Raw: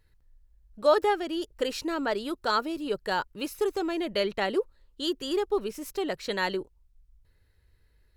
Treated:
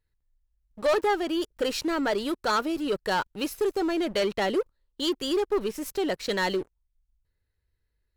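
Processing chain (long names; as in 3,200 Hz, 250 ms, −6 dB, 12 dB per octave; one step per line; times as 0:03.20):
leveller curve on the samples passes 3
level −7 dB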